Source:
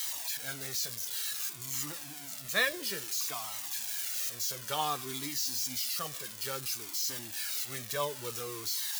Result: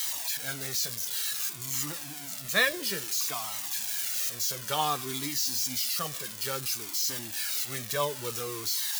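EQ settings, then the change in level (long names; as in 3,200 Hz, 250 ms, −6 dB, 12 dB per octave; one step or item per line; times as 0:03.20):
parametric band 180 Hz +3.5 dB 0.62 octaves
+4.0 dB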